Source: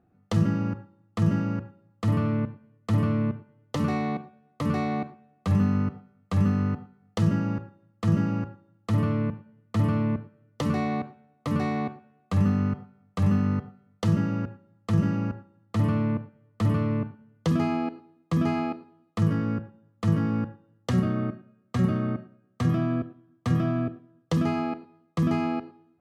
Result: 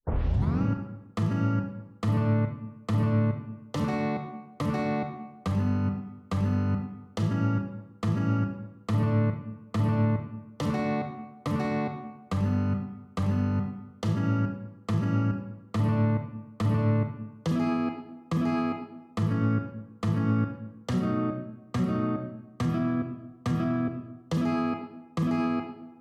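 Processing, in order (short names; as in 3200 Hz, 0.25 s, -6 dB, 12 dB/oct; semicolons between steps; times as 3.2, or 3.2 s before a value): tape start at the beginning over 0.62 s; limiter -19.5 dBFS, peak gain reduction 7.5 dB; on a send: reverb RT60 1.0 s, pre-delay 29 ms, DRR 5 dB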